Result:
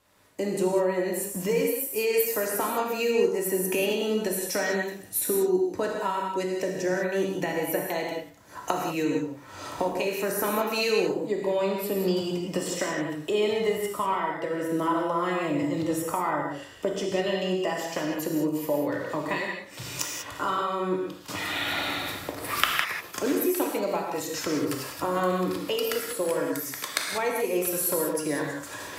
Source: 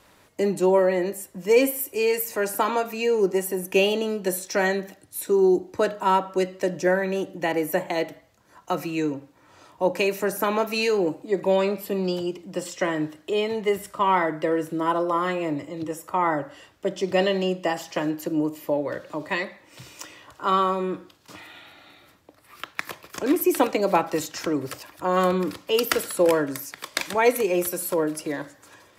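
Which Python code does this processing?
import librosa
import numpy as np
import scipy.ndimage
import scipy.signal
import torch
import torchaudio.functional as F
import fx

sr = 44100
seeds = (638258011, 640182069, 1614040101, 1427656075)

y = fx.recorder_agc(x, sr, target_db=-7.5, rise_db_per_s=24.0, max_gain_db=30)
y = fx.high_shelf(y, sr, hz=7100.0, db=4.0)
y = fx.rev_gated(y, sr, seeds[0], gate_ms=220, shape='flat', drr_db=0.0)
y = F.gain(torch.from_numpy(y), -12.5).numpy()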